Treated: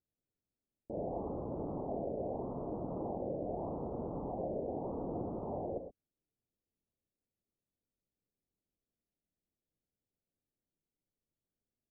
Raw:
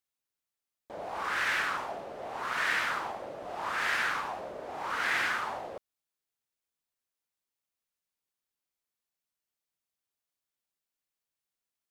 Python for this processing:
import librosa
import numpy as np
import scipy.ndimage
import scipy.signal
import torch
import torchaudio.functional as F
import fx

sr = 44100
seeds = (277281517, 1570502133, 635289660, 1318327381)

y = scipy.ndimage.gaussian_filter1d(x, 18.0, mode='constant')
y = fx.rev_gated(y, sr, seeds[0], gate_ms=140, shape='rising', drr_db=6.0)
y = y * 10.0 ** (11.0 / 20.0)